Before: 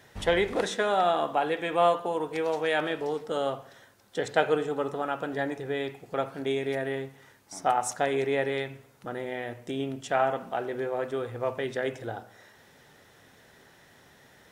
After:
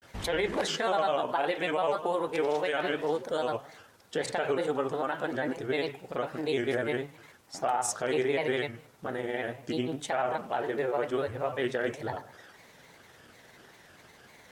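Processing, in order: low shelf 340 Hz -3 dB; limiter -21.5 dBFS, peak gain reduction 11.5 dB; grains, spray 22 ms, pitch spread up and down by 3 st; gain +3.5 dB

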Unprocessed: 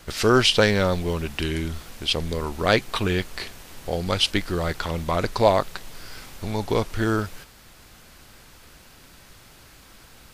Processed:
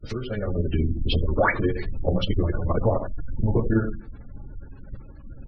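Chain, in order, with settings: tilt -2.5 dB/oct; expander -35 dBFS; echo 0.152 s -11 dB; tremolo triangle 10 Hz, depth 65%; painted sound rise, 2.64–2.85, 450–2400 Hz -11 dBFS; plain phase-vocoder stretch 0.53×; compressor 5:1, threshold -31 dBFS, peak gain reduction 17 dB; on a send at -6.5 dB: reverb RT60 0.40 s, pre-delay 3 ms; on the sum: spectral gate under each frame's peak -25 dB strong; dynamic EQ 920 Hz, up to -3 dB, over -60 dBFS, Q 3.7; AGC gain up to 13 dB; core saturation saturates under 70 Hz

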